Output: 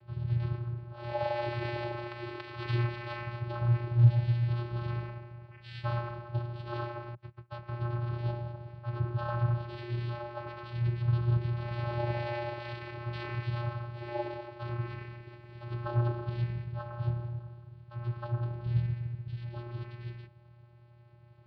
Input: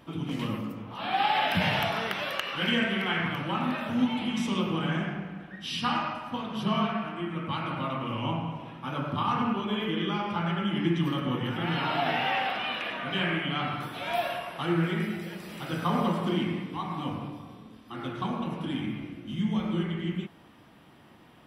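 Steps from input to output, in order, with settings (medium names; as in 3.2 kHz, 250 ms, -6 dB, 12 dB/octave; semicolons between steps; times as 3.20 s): 7.14–7.68 s: gate -30 dBFS, range -31 dB; mistuned SSB -140 Hz 160–3600 Hz; vocoder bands 8, square 119 Hz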